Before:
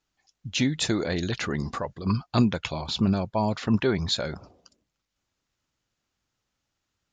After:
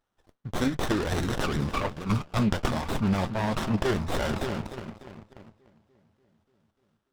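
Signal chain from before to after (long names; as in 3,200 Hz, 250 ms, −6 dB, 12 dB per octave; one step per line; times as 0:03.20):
high-shelf EQ 3,800 Hz +2.5 dB
feedback echo with a low-pass in the loop 293 ms, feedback 65%, low-pass 2,400 Hz, level −15 dB
flanger 1.4 Hz, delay 3 ms, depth 8.7 ms, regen −68%
leveller curve on the samples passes 2
in parallel at +1 dB: output level in coarse steps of 20 dB
on the sum: flat-topped bell 2,100 Hz +9.5 dB 2.6 octaves
reversed playback
downward compressor 5 to 1, threshold −24 dBFS, peak gain reduction 14 dB
reversed playback
notch filter 990 Hz, Q 12
windowed peak hold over 17 samples
level +1.5 dB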